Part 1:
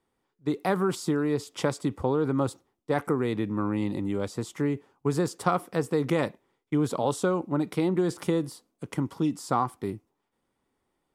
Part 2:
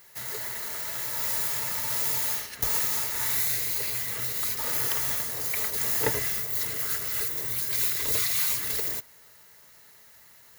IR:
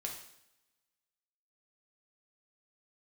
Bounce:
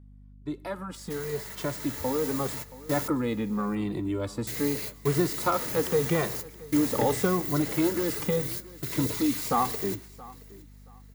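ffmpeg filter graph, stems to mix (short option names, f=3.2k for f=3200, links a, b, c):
-filter_complex "[0:a]asplit=2[a][b];[b]adelay=2.1,afreqshift=-0.83[c];[a][c]amix=inputs=2:normalize=1,volume=-6dB,asplit=4[d][e][f][g];[e]volume=-14dB[h];[f]volume=-19.5dB[i];[1:a]highpass=120,equalizer=f=15k:w=0.84:g=-5,acrossover=split=430[j][k];[k]acompressor=threshold=-38dB:ratio=6[l];[j][l]amix=inputs=2:normalize=0,adelay=950,volume=-2.5dB,asplit=3[m][n][o];[m]atrim=end=3.08,asetpts=PTS-STARTPTS,afade=t=out:st=3.076:d=0.004:c=hsin[p];[n]atrim=start=3.08:end=4.47,asetpts=PTS-STARTPTS,volume=0[q];[o]atrim=start=4.47,asetpts=PTS-STARTPTS,afade=t=in:d=0.004:c=hsin[r];[p][q][r]concat=n=3:v=0:a=1,asplit=3[s][t][u];[t]volume=-21dB[v];[u]volume=-20dB[w];[g]apad=whole_len=508600[x];[s][x]sidechaingate=range=-33dB:threshold=-54dB:ratio=16:detection=peak[y];[2:a]atrim=start_sample=2205[z];[h][v]amix=inputs=2:normalize=0[aa];[aa][z]afir=irnorm=-1:irlink=0[ab];[i][w]amix=inputs=2:normalize=0,aecho=0:1:675|1350|2025|2700:1|0.24|0.0576|0.0138[ac];[d][y][ab][ac]amix=inputs=4:normalize=0,dynaudnorm=f=250:g=17:m=7.5dB,aeval=exprs='val(0)+0.00355*(sin(2*PI*50*n/s)+sin(2*PI*2*50*n/s)/2+sin(2*PI*3*50*n/s)/3+sin(2*PI*4*50*n/s)/4+sin(2*PI*5*50*n/s)/5)':c=same"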